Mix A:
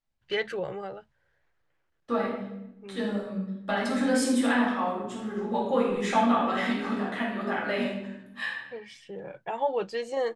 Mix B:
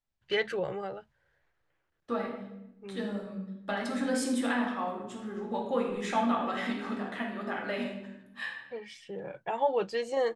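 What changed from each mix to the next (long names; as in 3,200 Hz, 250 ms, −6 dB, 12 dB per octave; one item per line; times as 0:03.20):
second voice: send −6.5 dB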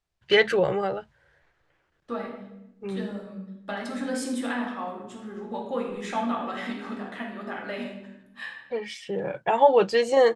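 first voice +10.0 dB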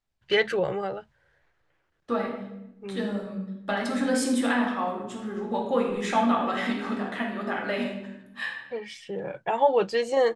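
first voice −3.5 dB
second voice +5.0 dB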